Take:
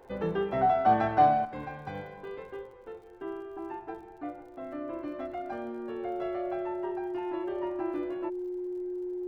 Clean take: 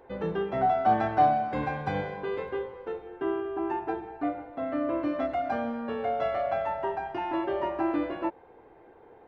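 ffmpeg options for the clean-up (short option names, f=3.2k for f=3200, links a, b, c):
-af "adeclick=t=4,bandreject=f=360:w=30,agate=range=-21dB:threshold=-39dB,asetnsamples=n=441:p=0,asendcmd='1.45 volume volume 8.5dB',volume=0dB"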